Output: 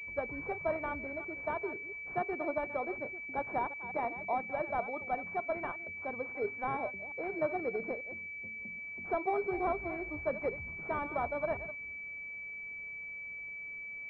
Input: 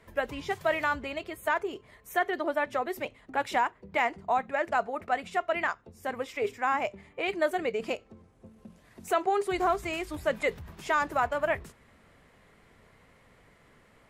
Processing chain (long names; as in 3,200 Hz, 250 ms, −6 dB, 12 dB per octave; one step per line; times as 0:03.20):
delay that plays each chunk backwards 178 ms, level −13 dB
switching amplifier with a slow clock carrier 2,300 Hz
level −5 dB